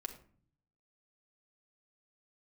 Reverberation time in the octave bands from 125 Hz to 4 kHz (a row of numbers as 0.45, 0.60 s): 1.0, 0.85, 0.50, 0.45, 0.40, 0.30 s